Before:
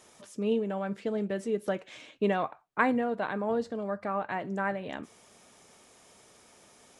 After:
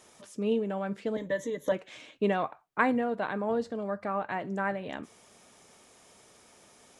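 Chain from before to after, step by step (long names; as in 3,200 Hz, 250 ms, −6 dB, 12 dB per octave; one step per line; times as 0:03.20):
0:01.16–0:01.72: EQ curve with evenly spaced ripples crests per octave 1.1, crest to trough 18 dB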